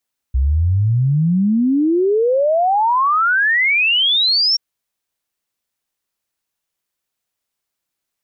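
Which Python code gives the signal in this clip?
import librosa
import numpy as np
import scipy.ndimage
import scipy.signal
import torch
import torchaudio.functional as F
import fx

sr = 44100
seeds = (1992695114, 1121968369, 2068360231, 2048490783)

y = fx.ess(sr, length_s=4.23, from_hz=62.0, to_hz=5600.0, level_db=-12.0)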